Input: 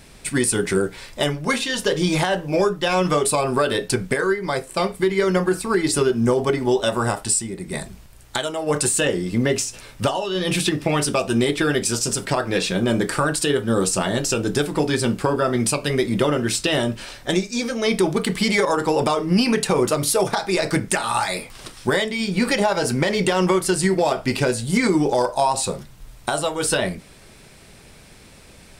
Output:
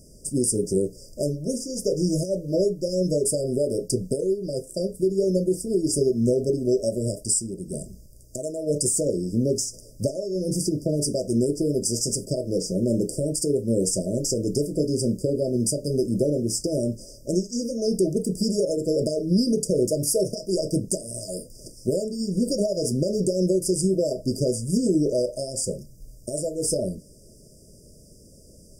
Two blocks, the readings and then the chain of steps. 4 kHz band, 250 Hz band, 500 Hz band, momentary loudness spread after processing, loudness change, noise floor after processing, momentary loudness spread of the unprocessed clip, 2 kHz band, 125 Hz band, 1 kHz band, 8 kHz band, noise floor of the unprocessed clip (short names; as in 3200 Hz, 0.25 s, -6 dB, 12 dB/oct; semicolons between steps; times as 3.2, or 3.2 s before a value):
-9.5 dB, -2.5 dB, -2.5 dB, 8 LU, -4.0 dB, -50 dBFS, 6 LU, under -40 dB, -2.5 dB, under -25 dB, -2.5 dB, -46 dBFS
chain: brick-wall FIR band-stop 660–4700 Hz; gain -2.5 dB